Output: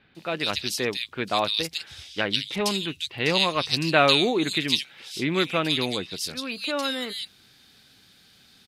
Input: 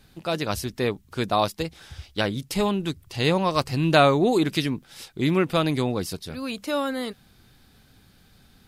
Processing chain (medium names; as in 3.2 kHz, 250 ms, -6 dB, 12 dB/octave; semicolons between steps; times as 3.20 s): frequency weighting D; bands offset in time lows, highs 150 ms, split 2.6 kHz; trim -2.5 dB